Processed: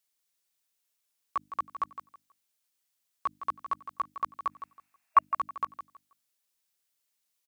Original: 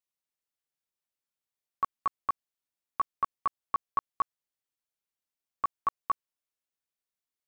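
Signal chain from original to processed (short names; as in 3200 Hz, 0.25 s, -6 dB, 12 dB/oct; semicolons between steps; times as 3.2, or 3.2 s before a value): whole clip reversed; HPF 65 Hz; high shelf 2400 Hz +9.5 dB; notches 50/100/150/200/250/300 Hz; limiter -25.5 dBFS, peak gain reduction 8 dB; spectral gain 4.51–5.24, 640–2800 Hz +12 dB; feedback echo 0.161 s, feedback 23%, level -11 dB; gain +3.5 dB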